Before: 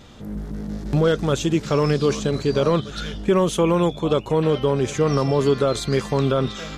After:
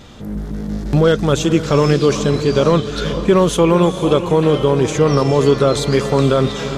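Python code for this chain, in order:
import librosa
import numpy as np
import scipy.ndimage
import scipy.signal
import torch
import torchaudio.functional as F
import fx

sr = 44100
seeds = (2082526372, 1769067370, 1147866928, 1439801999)

y = fx.echo_diffused(x, sr, ms=462, feedback_pct=46, wet_db=-11)
y = y * 10.0 ** (5.5 / 20.0)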